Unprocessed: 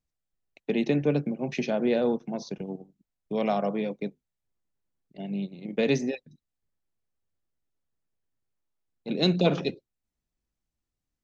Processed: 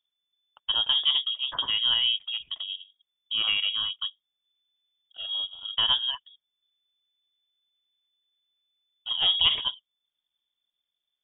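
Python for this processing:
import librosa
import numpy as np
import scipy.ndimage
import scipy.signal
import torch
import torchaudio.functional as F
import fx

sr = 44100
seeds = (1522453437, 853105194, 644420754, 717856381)

y = fx.freq_invert(x, sr, carrier_hz=3500)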